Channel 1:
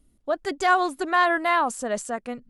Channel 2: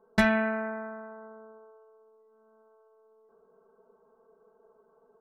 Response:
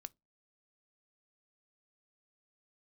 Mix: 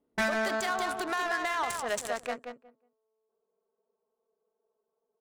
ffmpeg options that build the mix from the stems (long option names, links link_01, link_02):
-filter_complex "[0:a]highpass=frequency=400:poles=1,aemphasis=mode=production:type=riaa,acompressor=threshold=-25dB:ratio=20,volume=3dB,asplit=2[link_01][link_02];[link_02]volume=-6dB[link_03];[1:a]asplit=2[link_04][link_05];[link_05]highpass=frequency=720:poles=1,volume=16dB,asoftclip=type=tanh:threshold=-11dB[link_06];[link_04][link_06]amix=inputs=2:normalize=0,lowpass=frequency=5600:poles=1,volume=-6dB,afwtdn=0.0112,volume=-5dB[link_07];[link_03]aecho=0:1:182|364|546:1|0.2|0.04[link_08];[link_01][link_07][link_08]amix=inputs=3:normalize=0,adynamicsmooth=sensitivity=4:basefreq=820,alimiter=limit=-21.5dB:level=0:latency=1:release=52"